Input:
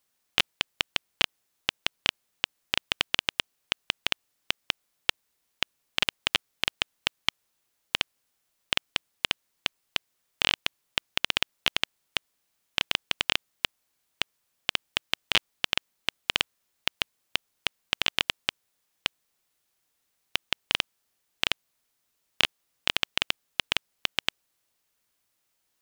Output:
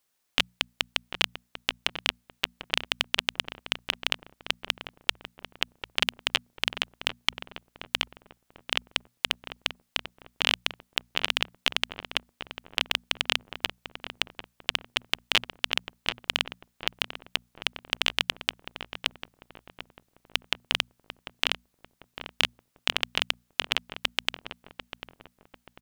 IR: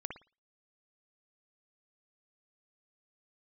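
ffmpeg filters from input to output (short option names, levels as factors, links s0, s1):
-filter_complex "[0:a]bandreject=f=60:t=h:w=6,bandreject=f=120:t=h:w=6,bandreject=f=180:t=h:w=6,bandreject=f=240:t=h:w=6,asplit=2[s0][s1];[s1]adelay=745,lowpass=f=1100:p=1,volume=0.473,asplit=2[s2][s3];[s3]adelay=745,lowpass=f=1100:p=1,volume=0.49,asplit=2[s4][s5];[s5]adelay=745,lowpass=f=1100:p=1,volume=0.49,asplit=2[s6][s7];[s7]adelay=745,lowpass=f=1100:p=1,volume=0.49,asplit=2[s8][s9];[s9]adelay=745,lowpass=f=1100:p=1,volume=0.49,asplit=2[s10][s11];[s11]adelay=745,lowpass=f=1100:p=1,volume=0.49[s12];[s0][s2][s4][s6][s8][s10][s12]amix=inputs=7:normalize=0"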